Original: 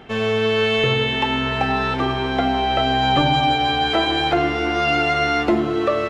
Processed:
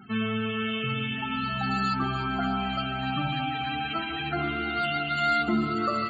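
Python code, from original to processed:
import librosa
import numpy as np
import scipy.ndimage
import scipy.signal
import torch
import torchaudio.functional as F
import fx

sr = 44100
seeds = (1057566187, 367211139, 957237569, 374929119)

y = scipy.signal.medfilt(x, 5)
y = fx.highpass(y, sr, hz=120.0, slope=6)
y = fx.peak_eq(y, sr, hz=490.0, db=-13.0, octaves=1.9)
y = fx.rider(y, sr, range_db=3, speed_s=0.5)
y = fx.comb_fb(y, sr, f0_hz=700.0, decay_s=0.44, harmonics='all', damping=0.0, mix_pct=50)
y = fx.small_body(y, sr, hz=(200.0, 1300.0), ring_ms=35, db=11)
y = fx.sample_hold(y, sr, seeds[0], rate_hz=5800.0, jitter_pct=20)
y = fx.spec_topn(y, sr, count=32)
y = fx.echo_alternate(y, sr, ms=147, hz=1700.0, feedback_pct=83, wet_db=-10.0)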